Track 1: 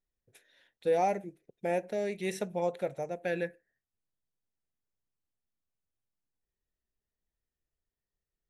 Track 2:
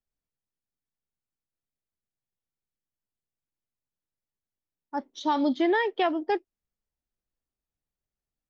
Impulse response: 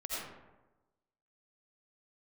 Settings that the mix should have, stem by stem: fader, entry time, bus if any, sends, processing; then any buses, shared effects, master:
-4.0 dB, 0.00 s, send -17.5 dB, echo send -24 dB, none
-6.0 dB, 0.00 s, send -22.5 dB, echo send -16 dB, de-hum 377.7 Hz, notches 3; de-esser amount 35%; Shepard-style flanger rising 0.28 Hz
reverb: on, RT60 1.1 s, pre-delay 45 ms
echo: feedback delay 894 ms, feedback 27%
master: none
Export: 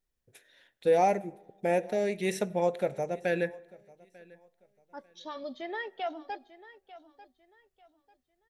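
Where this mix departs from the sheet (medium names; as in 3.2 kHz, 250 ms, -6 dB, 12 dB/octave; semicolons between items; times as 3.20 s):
stem 1 -4.0 dB -> +3.5 dB; reverb return -8.0 dB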